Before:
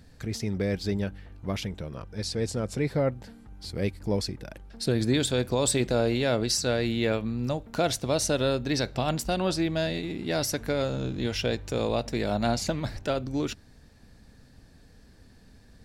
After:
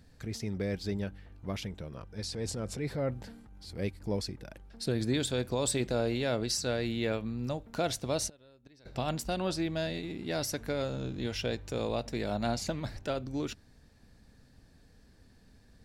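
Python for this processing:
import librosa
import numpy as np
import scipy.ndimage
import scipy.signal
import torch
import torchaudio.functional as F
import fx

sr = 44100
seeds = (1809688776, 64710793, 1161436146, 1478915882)

y = fx.transient(x, sr, attack_db=-6, sustain_db=5, at=(2.2, 3.79))
y = fx.gate_flip(y, sr, shuts_db=-21.0, range_db=-28, at=(8.28, 8.85), fade=0.02)
y = F.gain(torch.from_numpy(y), -5.5).numpy()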